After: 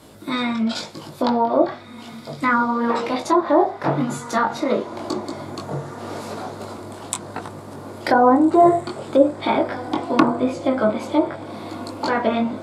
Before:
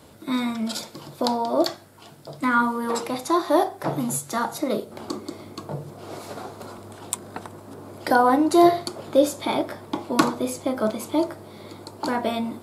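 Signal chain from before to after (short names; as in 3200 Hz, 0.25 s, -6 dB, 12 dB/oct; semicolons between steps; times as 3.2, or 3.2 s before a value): dynamic EQ 2000 Hz, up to +4 dB, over -36 dBFS, Q 0.75; chorus 0.94 Hz, delay 18.5 ms, depth 3.9 ms; treble ducked by the level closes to 910 Hz, closed at -18.5 dBFS; diffused feedback echo 1.671 s, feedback 41%, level -15.5 dB; gain +7 dB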